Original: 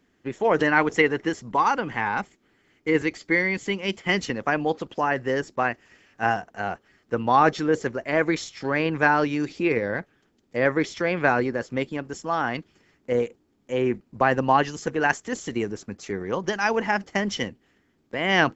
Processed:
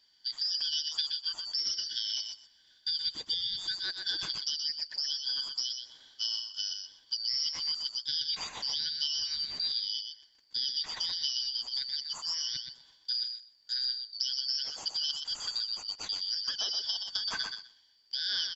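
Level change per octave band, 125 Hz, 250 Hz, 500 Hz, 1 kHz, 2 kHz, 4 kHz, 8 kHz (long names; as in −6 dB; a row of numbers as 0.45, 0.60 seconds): below −30 dB, below −35 dB, below −35 dB, −29.0 dB, −22.0 dB, +8.0 dB, can't be measured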